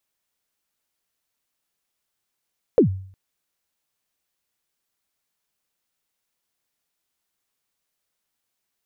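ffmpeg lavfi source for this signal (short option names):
-f lavfi -i "aevalsrc='0.398*pow(10,-3*t/0.54)*sin(2*PI*(540*0.105/log(95/540)*(exp(log(95/540)*min(t,0.105)/0.105)-1)+95*max(t-0.105,0)))':d=0.36:s=44100"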